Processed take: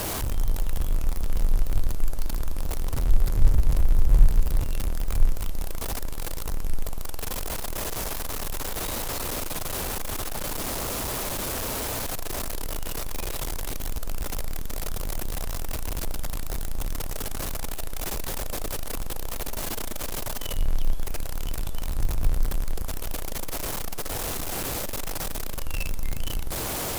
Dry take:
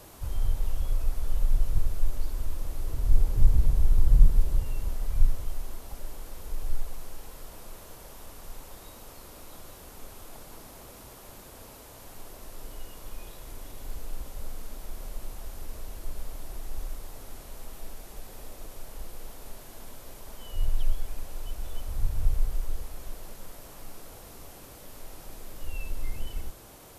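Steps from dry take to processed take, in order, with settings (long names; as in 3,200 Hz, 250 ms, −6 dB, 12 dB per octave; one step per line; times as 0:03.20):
converter with a step at zero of −24.5 dBFS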